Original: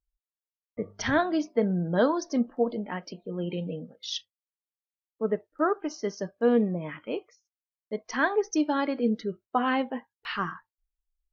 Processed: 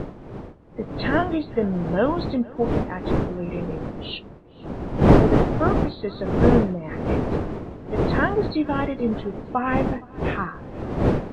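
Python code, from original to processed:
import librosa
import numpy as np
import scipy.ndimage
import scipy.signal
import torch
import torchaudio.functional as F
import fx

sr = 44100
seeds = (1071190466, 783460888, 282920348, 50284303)

y = fx.freq_compress(x, sr, knee_hz=2000.0, ratio=1.5)
y = fx.dmg_wind(y, sr, seeds[0], corner_hz=380.0, level_db=-26.0)
y = fx.echo_filtered(y, sr, ms=467, feedback_pct=53, hz=4700.0, wet_db=-23)
y = y * librosa.db_to_amplitude(2.0)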